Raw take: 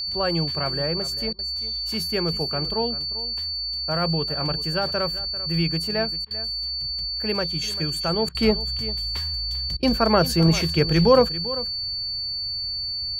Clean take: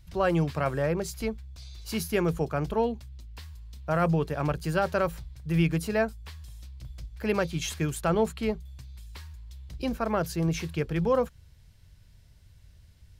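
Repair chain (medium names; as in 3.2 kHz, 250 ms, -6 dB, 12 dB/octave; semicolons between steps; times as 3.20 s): band-stop 4.5 kHz, Q 30; interpolate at 1.33/6.25/8.29/9.77 s, 56 ms; inverse comb 393 ms -15.5 dB; trim 0 dB, from 8.28 s -9 dB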